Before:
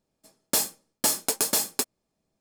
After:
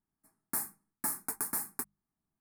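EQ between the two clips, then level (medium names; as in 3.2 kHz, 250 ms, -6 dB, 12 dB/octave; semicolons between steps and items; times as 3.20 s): high-order bell 4.5 kHz -12 dB; hum notches 50/100/150/200 Hz; static phaser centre 1.3 kHz, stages 4; -6.5 dB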